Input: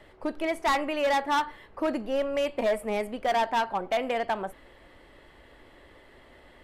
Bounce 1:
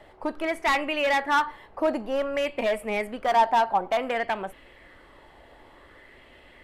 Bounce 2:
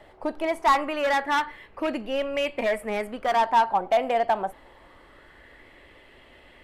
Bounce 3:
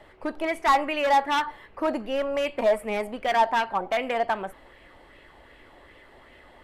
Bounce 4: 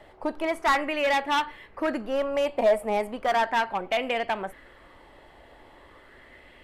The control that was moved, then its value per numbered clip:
LFO bell, rate: 0.55, 0.24, 2.6, 0.37 Hz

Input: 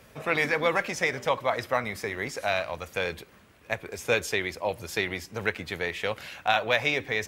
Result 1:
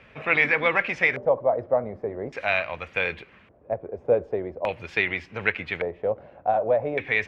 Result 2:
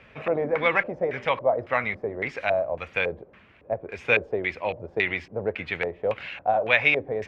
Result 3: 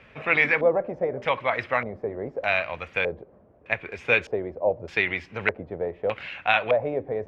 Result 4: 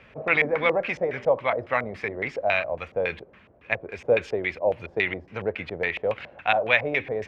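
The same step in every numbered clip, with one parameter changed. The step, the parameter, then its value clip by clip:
LFO low-pass, rate: 0.43, 1.8, 0.82, 3.6 Hz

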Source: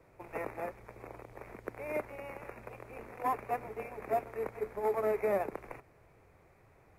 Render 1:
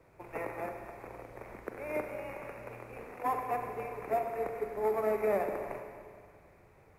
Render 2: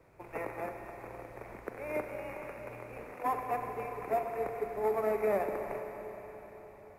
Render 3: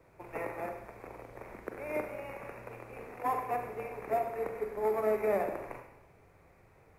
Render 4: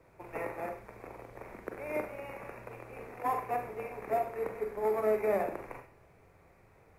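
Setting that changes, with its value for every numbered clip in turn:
Schroeder reverb, RT60: 2.1, 4.5, 0.85, 0.4 s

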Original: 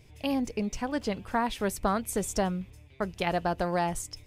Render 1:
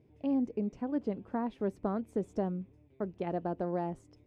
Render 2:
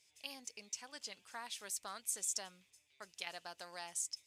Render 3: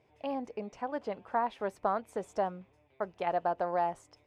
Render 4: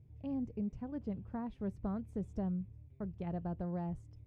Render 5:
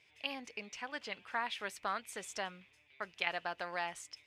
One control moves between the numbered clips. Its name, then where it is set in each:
band-pass, frequency: 300, 7000, 750, 110, 2400 Hz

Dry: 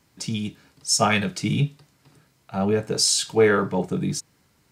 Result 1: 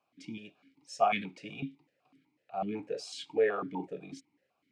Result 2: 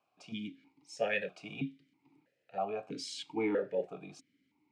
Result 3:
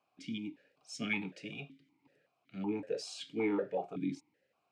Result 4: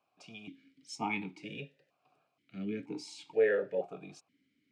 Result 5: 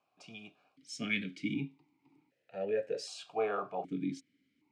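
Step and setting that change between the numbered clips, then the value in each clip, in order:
vowel sequencer, rate: 8, 3.1, 5.3, 2.1, 1.3 Hz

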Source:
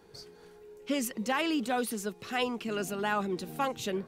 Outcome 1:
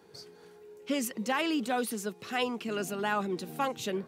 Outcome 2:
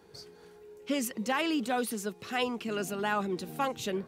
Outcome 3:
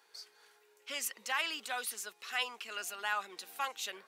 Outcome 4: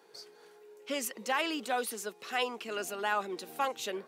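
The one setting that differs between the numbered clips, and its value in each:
HPF, cutoff: 110, 43, 1200, 440 Hz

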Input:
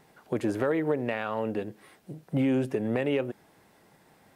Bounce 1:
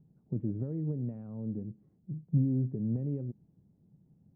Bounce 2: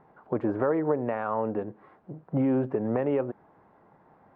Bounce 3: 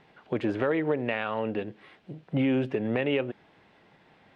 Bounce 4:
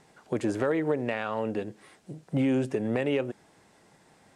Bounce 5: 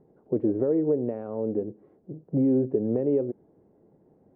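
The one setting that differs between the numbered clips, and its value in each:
synth low-pass, frequency: 160, 1100, 3100, 7900, 420 Hz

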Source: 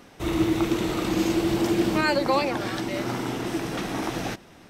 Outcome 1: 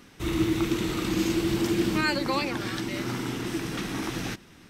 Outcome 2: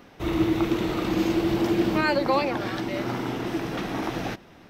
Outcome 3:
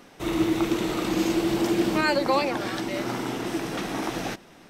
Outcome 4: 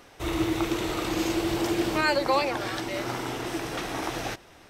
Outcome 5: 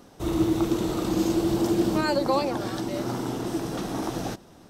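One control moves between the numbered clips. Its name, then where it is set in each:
bell, frequency: 660, 8600, 75, 200, 2200 Hz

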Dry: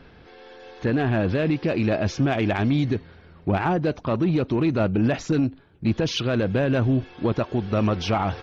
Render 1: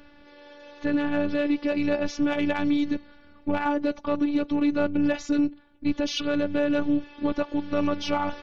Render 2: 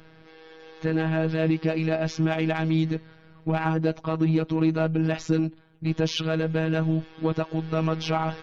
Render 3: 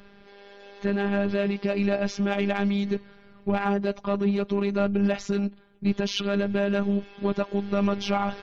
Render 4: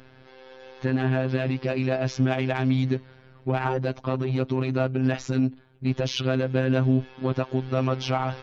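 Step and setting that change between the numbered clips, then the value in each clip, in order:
robotiser, frequency: 290, 160, 200, 130 Hz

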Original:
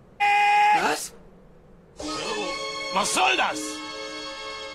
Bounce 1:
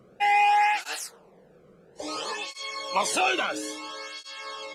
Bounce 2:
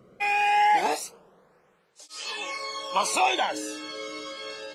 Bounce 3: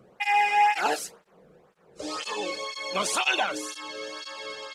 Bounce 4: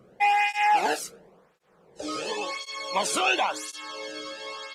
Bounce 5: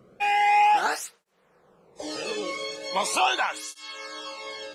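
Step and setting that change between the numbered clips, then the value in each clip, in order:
tape flanging out of phase, nulls at: 0.59, 0.24, 2, 0.94, 0.4 Hz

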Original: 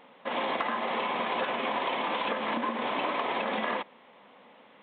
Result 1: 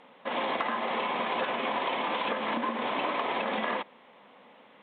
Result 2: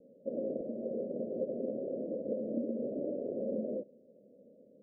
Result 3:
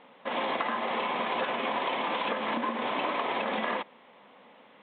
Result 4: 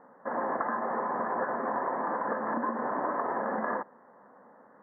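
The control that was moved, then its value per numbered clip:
steep low-pass, frequency: 12000, 600, 4500, 1800 Hz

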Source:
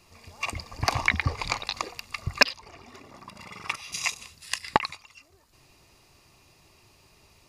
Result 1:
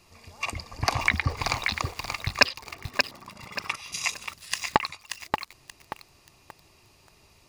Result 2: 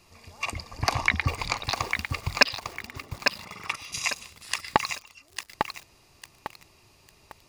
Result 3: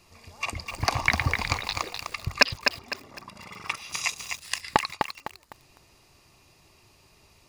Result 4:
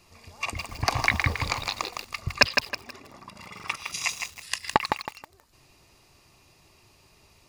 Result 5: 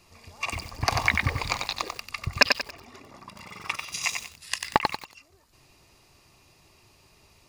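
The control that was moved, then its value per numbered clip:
lo-fi delay, time: 581, 851, 253, 160, 93 ms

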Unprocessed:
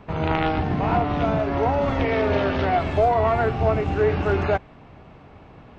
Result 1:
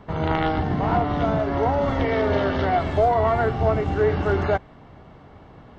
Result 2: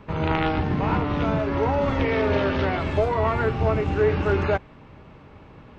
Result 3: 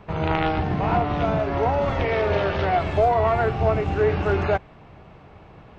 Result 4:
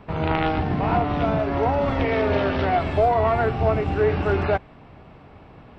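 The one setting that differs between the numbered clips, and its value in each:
notch, frequency: 2500, 710, 260, 6500 Hz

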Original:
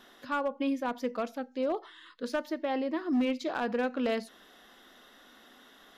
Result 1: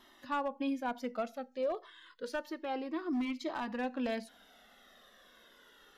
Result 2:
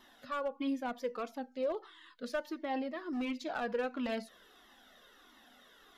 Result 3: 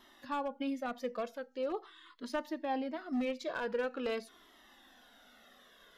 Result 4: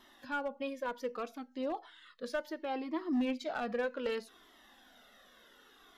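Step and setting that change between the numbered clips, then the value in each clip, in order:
cascading flanger, rate: 0.29, 1.5, 0.44, 0.66 Hz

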